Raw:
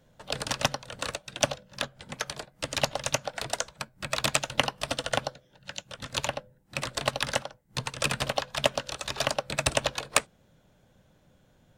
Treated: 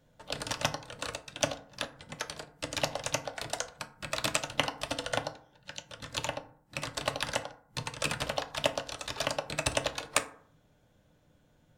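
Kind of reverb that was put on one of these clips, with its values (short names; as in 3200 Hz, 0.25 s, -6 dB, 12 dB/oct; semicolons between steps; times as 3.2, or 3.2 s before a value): FDN reverb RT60 0.56 s, low-frequency decay 1×, high-frequency decay 0.45×, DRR 7.5 dB; gain -4.5 dB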